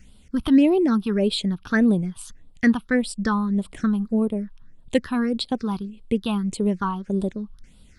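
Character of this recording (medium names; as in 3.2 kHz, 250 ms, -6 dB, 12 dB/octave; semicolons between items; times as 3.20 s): phasing stages 6, 1.7 Hz, lowest notch 500–1800 Hz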